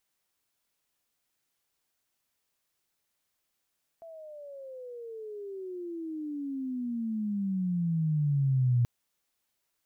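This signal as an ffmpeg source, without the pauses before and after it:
ffmpeg -f lavfi -i "aevalsrc='pow(10,(-21+22.5*(t/4.83-1))/20)*sin(2*PI*671*4.83/(-30*log(2)/12)*(exp(-30*log(2)/12*t/4.83)-1))':duration=4.83:sample_rate=44100" out.wav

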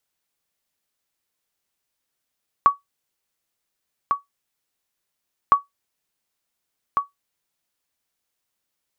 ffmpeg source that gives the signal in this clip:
ffmpeg -f lavfi -i "aevalsrc='0.562*(sin(2*PI*1130*mod(t,2.86))*exp(-6.91*mod(t,2.86)/0.15)+0.473*sin(2*PI*1130*max(mod(t,2.86)-1.45,0))*exp(-6.91*max(mod(t,2.86)-1.45,0)/0.15))':duration=5.72:sample_rate=44100" out.wav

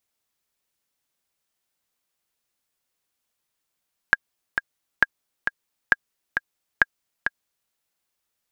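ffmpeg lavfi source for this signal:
ffmpeg -f lavfi -i "aevalsrc='pow(10,(-1.5-7*gte(mod(t,2*60/134),60/134))/20)*sin(2*PI*1630*mod(t,60/134))*exp(-6.91*mod(t,60/134)/0.03)':duration=3.58:sample_rate=44100" out.wav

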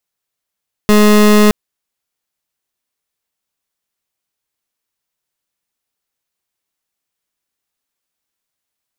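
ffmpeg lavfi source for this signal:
ffmpeg -f lavfi -i "aevalsrc='0.422*(2*lt(mod(210*t,1),0.27)-1)':duration=0.62:sample_rate=44100" out.wav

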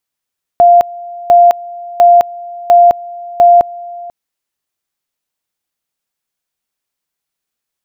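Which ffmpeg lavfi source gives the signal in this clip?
ffmpeg -f lavfi -i "aevalsrc='pow(10,(-2-21.5*gte(mod(t,0.7),0.21))/20)*sin(2*PI*697*t)':duration=3.5:sample_rate=44100" out.wav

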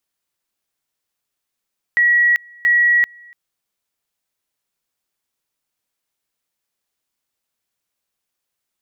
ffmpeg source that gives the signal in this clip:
ffmpeg -f lavfi -i "aevalsrc='pow(10,(-10.5-29*gte(mod(t,0.68),0.39))/20)*sin(2*PI*1920*t)':duration=1.36:sample_rate=44100" out.wav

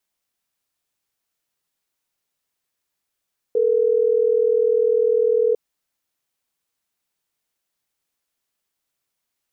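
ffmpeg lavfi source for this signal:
ffmpeg -f lavfi -i "aevalsrc='0.133*(sin(2*PI*440*t)+sin(2*PI*480*t))*clip(min(mod(t,6),2-mod(t,6))/0.005,0,1)':duration=3.12:sample_rate=44100" out.wav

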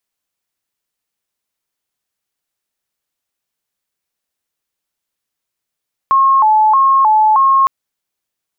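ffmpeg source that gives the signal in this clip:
ffmpeg -f lavfi -i "aevalsrc='0.447*sin(2*PI*(971.5*t+108.5/1.6*(0.5-abs(mod(1.6*t,1)-0.5))))':duration=1.56:sample_rate=44100" out.wav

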